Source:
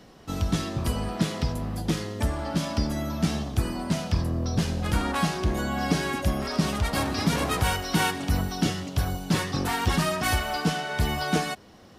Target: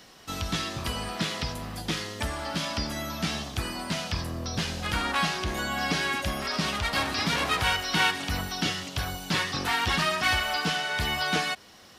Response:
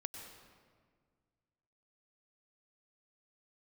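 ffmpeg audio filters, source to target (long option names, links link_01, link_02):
-filter_complex "[0:a]acrossover=split=4700[link_01][link_02];[link_02]acompressor=threshold=-49dB:ratio=4:attack=1:release=60[link_03];[link_01][link_03]amix=inputs=2:normalize=0,tiltshelf=frequency=940:gain=-7.5"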